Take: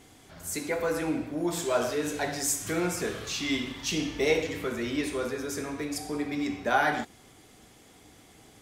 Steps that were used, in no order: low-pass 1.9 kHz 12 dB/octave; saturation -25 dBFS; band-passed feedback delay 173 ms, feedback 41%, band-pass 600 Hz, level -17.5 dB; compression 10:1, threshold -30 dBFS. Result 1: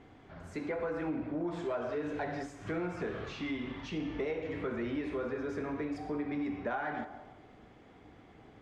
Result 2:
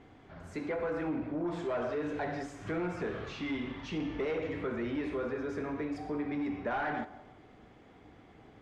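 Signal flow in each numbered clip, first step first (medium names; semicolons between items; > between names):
band-passed feedback delay > compression > saturation > low-pass; saturation > band-passed feedback delay > compression > low-pass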